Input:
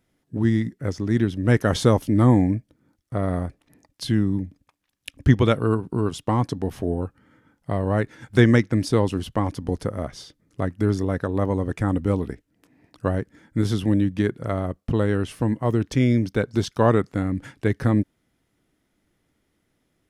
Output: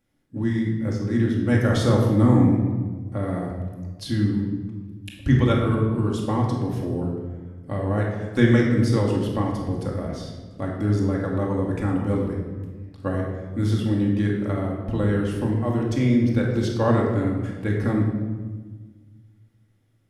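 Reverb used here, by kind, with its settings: shoebox room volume 1200 m³, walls mixed, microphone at 2.3 m; gain -6 dB

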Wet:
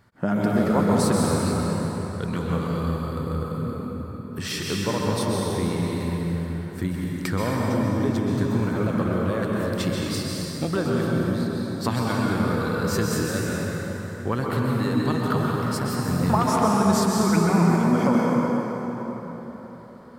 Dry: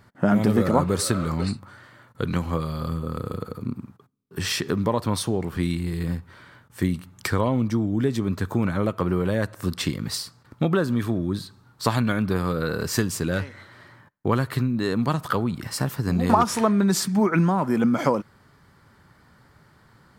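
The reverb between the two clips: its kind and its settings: plate-style reverb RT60 4.4 s, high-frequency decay 0.6×, pre-delay 0.115 s, DRR -3.5 dB; gain -4.5 dB

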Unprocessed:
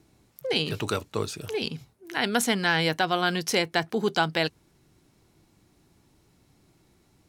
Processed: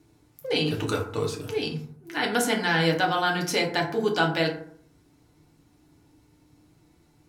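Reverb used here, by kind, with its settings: FDN reverb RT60 0.59 s, low-frequency decay 1.2×, high-frequency decay 0.45×, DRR -1 dB; gain -3 dB

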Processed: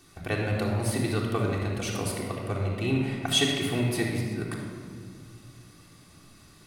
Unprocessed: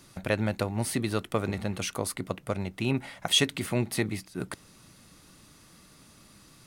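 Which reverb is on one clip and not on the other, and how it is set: shoebox room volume 3500 m³, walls mixed, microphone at 3.5 m; gain -4 dB

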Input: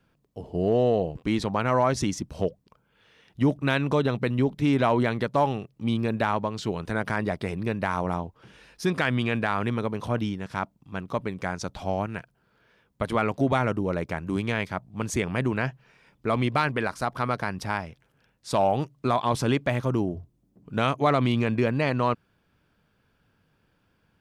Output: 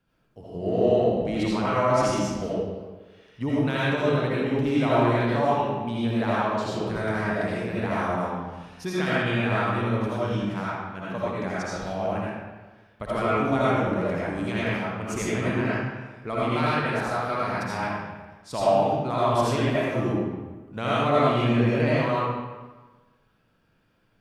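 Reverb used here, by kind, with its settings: digital reverb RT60 1.3 s, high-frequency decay 0.75×, pre-delay 40 ms, DRR -8.5 dB; gain -7.5 dB

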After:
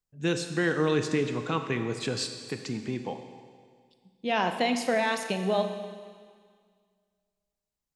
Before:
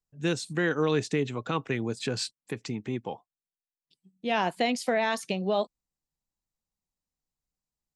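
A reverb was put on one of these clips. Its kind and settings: Schroeder reverb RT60 1.9 s, combs from 29 ms, DRR 7 dB

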